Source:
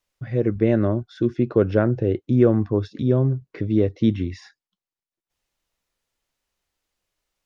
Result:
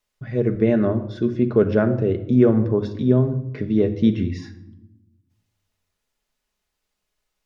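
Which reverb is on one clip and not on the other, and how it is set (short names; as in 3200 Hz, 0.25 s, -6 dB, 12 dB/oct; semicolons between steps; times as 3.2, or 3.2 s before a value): shoebox room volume 3000 m³, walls furnished, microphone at 1.4 m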